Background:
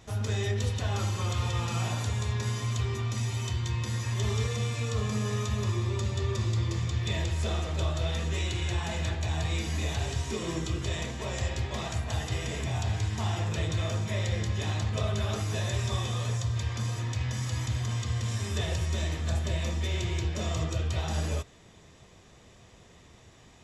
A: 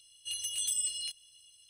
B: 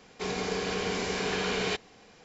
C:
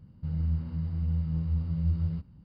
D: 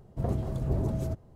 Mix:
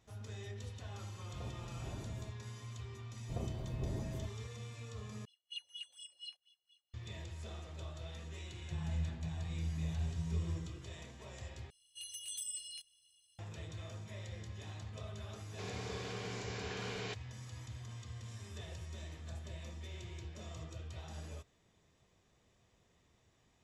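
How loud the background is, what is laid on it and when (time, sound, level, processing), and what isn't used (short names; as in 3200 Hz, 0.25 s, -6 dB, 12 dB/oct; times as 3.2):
background -17 dB
1.16 add D -17.5 dB
3.12 add D -11 dB
5.25 replace with A -0.5 dB + wah 4.2 Hz 510–3700 Hz, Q 5.8
8.48 add C -9.5 dB
11.7 replace with A -10.5 dB
15.38 add B -13 dB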